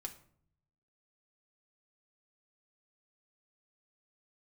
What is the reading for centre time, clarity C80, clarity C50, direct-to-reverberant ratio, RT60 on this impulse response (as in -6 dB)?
10 ms, 16.5 dB, 13.0 dB, 3.5 dB, 0.60 s